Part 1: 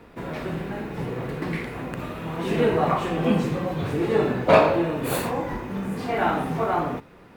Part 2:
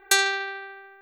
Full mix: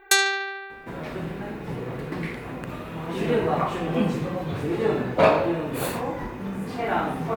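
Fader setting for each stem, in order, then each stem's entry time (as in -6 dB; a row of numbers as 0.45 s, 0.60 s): -2.0 dB, +1.0 dB; 0.70 s, 0.00 s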